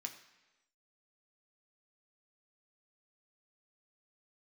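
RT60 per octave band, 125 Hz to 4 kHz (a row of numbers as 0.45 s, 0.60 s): 0.95 s, 1.0 s, 1.1 s, 1.1 s, 1.1 s, 1.0 s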